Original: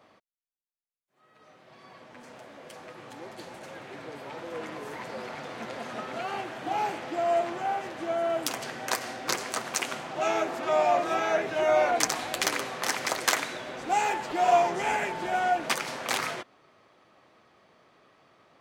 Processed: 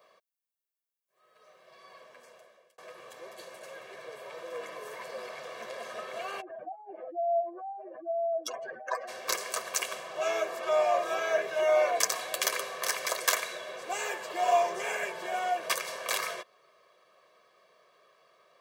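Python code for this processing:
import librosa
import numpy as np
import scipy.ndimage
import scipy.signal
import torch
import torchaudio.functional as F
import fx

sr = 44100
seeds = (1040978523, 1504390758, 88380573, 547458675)

y = fx.spec_expand(x, sr, power=3.1, at=(6.4, 9.07), fade=0.02)
y = fx.edit(y, sr, fx.fade_out_span(start_s=2.02, length_s=0.76), tone=tone)
y = scipy.signal.sosfilt(scipy.signal.butter(2, 290.0, 'highpass', fs=sr, output='sos'), y)
y = fx.high_shelf(y, sr, hz=11000.0, db=11.5)
y = y + 0.89 * np.pad(y, (int(1.8 * sr / 1000.0), 0))[:len(y)]
y = F.gain(torch.from_numpy(y), -5.5).numpy()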